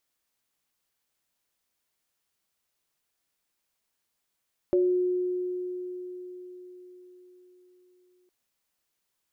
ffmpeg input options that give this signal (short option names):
-f lavfi -i "aevalsrc='0.112*pow(10,-3*t/4.8)*sin(2*PI*362*t)+0.0531*pow(10,-3*t/0.37)*sin(2*PI*563*t)':d=3.56:s=44100"